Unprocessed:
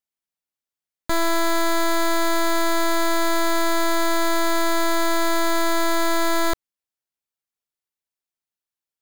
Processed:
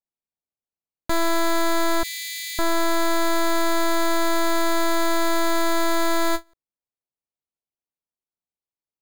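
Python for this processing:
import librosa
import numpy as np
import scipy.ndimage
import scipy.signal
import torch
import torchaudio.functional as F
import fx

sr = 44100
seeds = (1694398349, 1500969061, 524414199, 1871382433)

y = fx.wiener(x, sr, points=25)
y = fx.brickwall_highpass(y, sr, low_hz=1700.0, at=(2.03, 2.59))
y = fx.end_taper(y, sr, db_per_s=430.0)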